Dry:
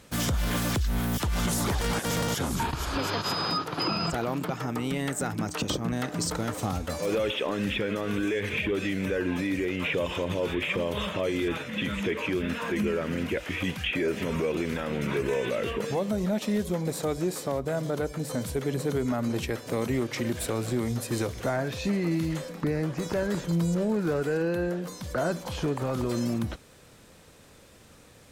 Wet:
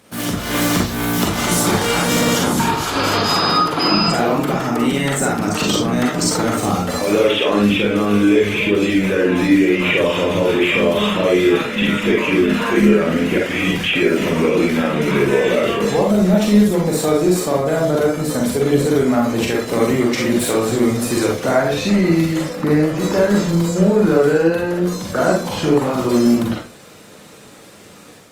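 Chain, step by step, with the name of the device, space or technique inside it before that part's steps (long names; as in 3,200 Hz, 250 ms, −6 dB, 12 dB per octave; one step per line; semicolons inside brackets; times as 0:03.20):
0:07.59–0:08.92: parametric band 1,800 Hz −6 dB 0.54 octaves
far-field microphone of a smart speaker (convolution reverb RT60 0.35 s, pre-delay 38 ms, DRR −2 dB; high-pass filter 140 Hz 12 dB per octave; automatic gain control gain up to 5.5 dB; level +3.5 dB; Opus 32 kbit/s 48,000 Hz)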